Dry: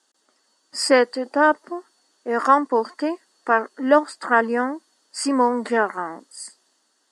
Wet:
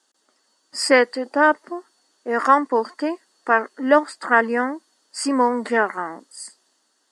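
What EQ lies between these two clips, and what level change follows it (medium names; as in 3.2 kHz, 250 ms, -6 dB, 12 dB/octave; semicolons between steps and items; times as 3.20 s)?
dynamic bell 2.1 kHz, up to +6 dB, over -38 dBFS, Q 2.3; 0.0 dB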